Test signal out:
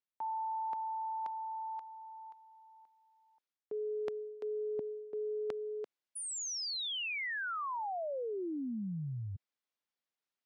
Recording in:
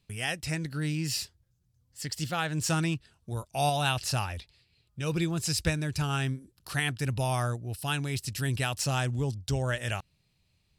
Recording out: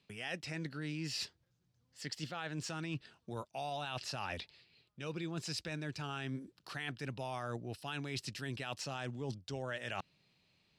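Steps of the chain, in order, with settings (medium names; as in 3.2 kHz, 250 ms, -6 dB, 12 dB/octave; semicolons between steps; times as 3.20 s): three-band isolator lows -19 dB, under 160 Hz, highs -17 dB, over 5.7 kHz; peak limiter -22.5 dBFS; reverse; compression 6:1, threshold -41 dBFS; reverse; trim +3.5 dB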